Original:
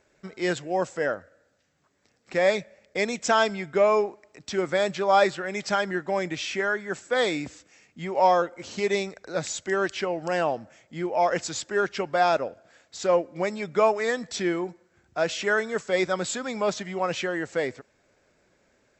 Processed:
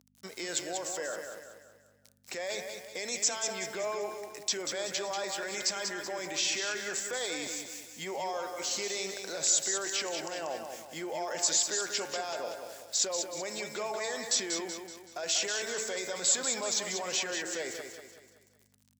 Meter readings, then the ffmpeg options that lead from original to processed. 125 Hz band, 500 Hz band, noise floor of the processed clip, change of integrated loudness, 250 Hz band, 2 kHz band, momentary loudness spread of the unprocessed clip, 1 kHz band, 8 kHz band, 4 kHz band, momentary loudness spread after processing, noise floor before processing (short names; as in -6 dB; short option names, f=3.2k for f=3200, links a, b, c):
-16.0 dB, -12.0 dB, -65 dBFS, -6.0 dB, -12.5 dB, -8.5 dB, 10 LU, -13.0 dB, +8.5 dB, +2.0 dB, 13 LU, -67 dBFS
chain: -filter_complex "[0:a]bandreject=f=110:t=h:w=4,bandreject=f=220:t=h:w=4,bandreject=f=330:t=h:w=4,bandreject=f=440:t=h:w=4,bandreject=f=550:t=h:w=4,bandreject=f=660:t=h:w=4,bandreject=f=770:t=h:w=4,bandreject=f=880:t=h:w=4,bandreject=f=990:t=h:w=4,bandreject=f=1.1k:t=h:w=4,bandreject=f=1.21k:t=h:w=4,bandreject=f=1.32k:t=h:w=4,bandreject=f=1.43k:t=h:w=4,bandreject=f=1.54k:t=h:w=4,bandreject=f=1.65k:t=h:w=4,bandreject=f=1.76k:t=h:w=4,bandreject=f=1.87k:t=h:w=4,bandreject=f=1.98k:t=h:w=4,bandreject=f=2.09k:t=h:w=4,bandreject=f=2.2k:t=h:w=4,bandreject=f=2.31k:t=h:w=4,bandreject=f=2.42k:t=h:w=4,bandreject=f=2.53k:t=h:w=4,bandreject=f=2.64k:t=h:w=4,bandreject=f=2.75k:t=h:w=4,bandreject=f=2.86k:t=h:w=4,bandreject=f=2.97k:t=h:w=4,bandreject=f=3.08k:t=h:w=4,acompressor=threshold=-26dB:ratio=6,aeval=exprs='val(0)*gte(abs(val(0)),0.0015)':c=same,alimiter=level_in=3.5dB:limit=-24dB:level=0:latency=1:release=19,volume=-3.5dB,aeval=exprs='val(0)+0.00224*(sin(2*PI*50*n/s)+sin(2*PI*2*50*n/s)/2+sin(2*PI*3*50*n/s)/3+sin(2*PI*4*50*n/s)/4+sin(2*PI*5*50*n/s)/5)':c=same,highpass=84,bass=f=250:g=-15,treble=f=4k:g=14,bandreject=f=1.3k:w=16,asplit=2[a][b];[b]aecho=0:1:189|378|567|756|945:0.473|0.208|0.0916|0.0403|0.0177[c];[a][c]amix=inputs=2:normalize=0"